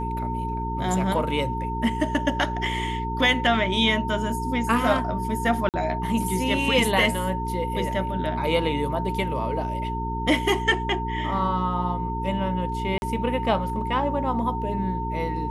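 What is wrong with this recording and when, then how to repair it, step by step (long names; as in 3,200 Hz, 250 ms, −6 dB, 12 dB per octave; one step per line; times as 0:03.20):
mains hum 60 Hz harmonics 7 −30 dBFS
whistle 910 Hz −29 dBFS
0:05.69–0:05.74: drop-out 48 ms
0:12.98–0:13.02: drop-out 41 ms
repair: hum removal 60 Hz, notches 7
notch filter 910 Hz, Q 30
repair the gap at 0:05.69, 48 ms
repair the gap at 0:12.98, 41 ms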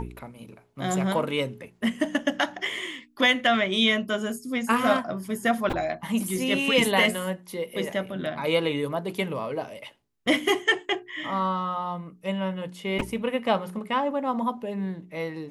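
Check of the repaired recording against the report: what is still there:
none of them is left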